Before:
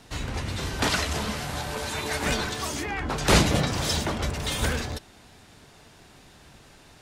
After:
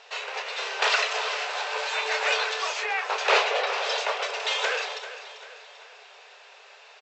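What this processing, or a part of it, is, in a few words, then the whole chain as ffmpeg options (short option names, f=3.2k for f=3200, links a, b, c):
intercom: -filter_complex "[0:a]highpass=430,lowpass=4.9k,equalizer=f=2.6k:t=o:w=0.23:g=6.5,asoftclip=type=tanh:threshold=-14dB,asplit=2[a][b];[b]adelay=28,volume=-11dB[c];[a][c]amix=inputs=2:normalize=0,asettb=1/sr,asplit=3[d][e][f];[d]atrim=end=3.274[g];[e]atrim=start=3.27:end=3.98,asetpts=PTS-STARTPTS,afade=t=in:d=0.004:c=qsin,afade=t=out:st=0.706:d=0.004:c=qsin,aemphasis=mode=reproduction:type=50fm[h];[f]atrim=start=3.976[i];[g][h]acrossfade=d=0.004:c1=hsin:c2=qsin[j];[j][i]acrossfade=d=0.004:c1=qsin:c2=hsin,afftfilt=real='re*between(b*sr/4096,390,8000)':imag='im*between(b*sr/4096,390,8000)':win_size=4096:overlap=0.75,aecho=1:1:392|784|1176|1568|1960:0.224|0.105|0.0495|0.0232|0.0109,volume=3.5dB"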